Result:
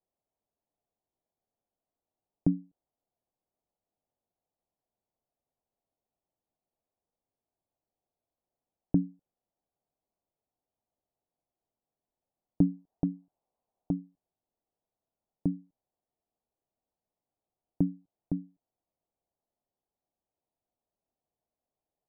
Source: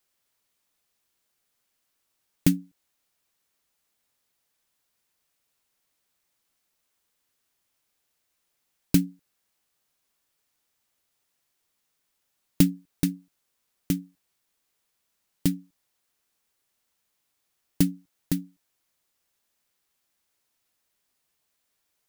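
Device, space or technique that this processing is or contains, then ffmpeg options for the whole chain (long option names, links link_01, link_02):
under water: -filter_complex "[0:a]lowpass=frequency=830:width=0.5412,lowpass=frequency=830:width=1.3066,equalizer=frequency=710:width_type=o:width=0.47:gain=5.5,asettb=1/sr,asplit=3[link_01][link_02][link_03];[link_01]atrim=end=12.614[link_04];[link_02]atrim=start=12.61:end=14,asetpts=PTS-STARTPTS,afade=type=in:duration=0.004:curve=qsin,afade=type=out:start_time=1.386:duration=0.004:curve=qsin,equalizer=frequency=810:width_type=o:width=1.2:gain=7[link_05];[link_03]atrim=start=13.996[link_06];[link_04][link_05]acrossfade=duration=0.004:curve1=hsin:curve2=qsin[link_07];[link_07][link_06]acrossfade=duration=0.004:curve1=qsin:curve2=hsin,volume=-5dB"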